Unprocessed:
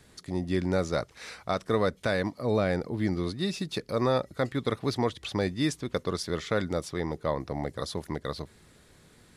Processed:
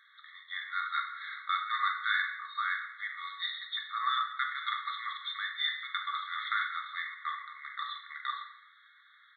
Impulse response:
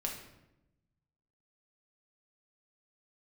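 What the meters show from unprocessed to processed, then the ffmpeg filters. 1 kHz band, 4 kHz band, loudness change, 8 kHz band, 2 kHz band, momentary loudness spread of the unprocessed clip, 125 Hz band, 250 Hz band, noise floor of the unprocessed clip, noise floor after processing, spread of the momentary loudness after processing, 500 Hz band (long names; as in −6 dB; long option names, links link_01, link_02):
+2.0 dB, +2.5 dB, −4.0 dB, below −35 dB, +5.0 dB, 8 LU, below −40 dB, below −40 dB, −58 dBFS, −61 dBFS, 9 LU, below −40 dB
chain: -filter_complex "[0:a]aresample=8000,aresample=44100[link_01];[1:a]atrim=start_sample=2205[link_02];[link_01][link_02]afir=irnorm=-1:irlink=0,afftfilt=real='re*eq(mod(floor(b*sr/1024/1100),2),1)':imag='im*eq(mod(floor(b*sr/1024/1100),2),1)':win_size=1024:overlap=0.75,volume=4.5dB"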